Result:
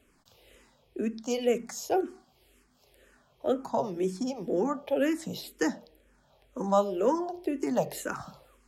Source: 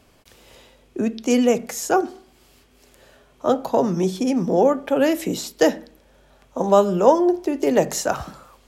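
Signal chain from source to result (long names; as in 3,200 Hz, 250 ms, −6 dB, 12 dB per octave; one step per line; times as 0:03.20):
notch filter 5,900 Hz, Q 24
frequency shifter mixed with the dry sound −2 Hz
level −6.5 dB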